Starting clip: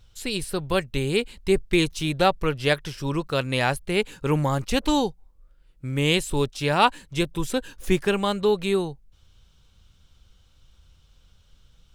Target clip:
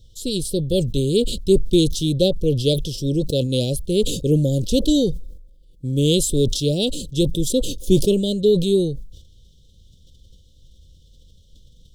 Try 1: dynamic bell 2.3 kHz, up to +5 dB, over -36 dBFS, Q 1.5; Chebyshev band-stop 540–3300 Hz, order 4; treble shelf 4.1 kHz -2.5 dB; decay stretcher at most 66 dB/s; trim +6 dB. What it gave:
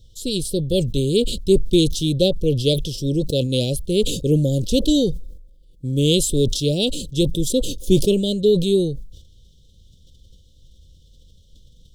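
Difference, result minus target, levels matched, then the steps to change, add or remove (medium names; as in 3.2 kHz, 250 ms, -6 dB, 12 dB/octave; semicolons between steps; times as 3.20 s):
2 kHz band +3.5 dB
remove: dynamic bell 2.3 kHz, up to +5 dB, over -36 dBFS, Q 1.5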